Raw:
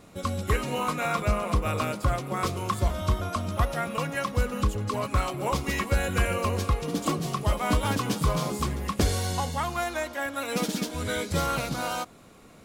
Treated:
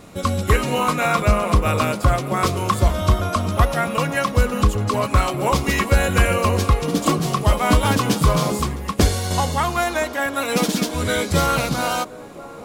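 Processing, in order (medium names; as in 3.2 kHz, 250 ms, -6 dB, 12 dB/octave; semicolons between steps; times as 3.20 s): on a send: feedback echo behind a band-pass 1019 ms, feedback 65%, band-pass 530 Hz, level -16 dB; 8.61–9.31 s: on the sum: upward expansion 1.5:1, over -32 dBFS; trim +8.5 dB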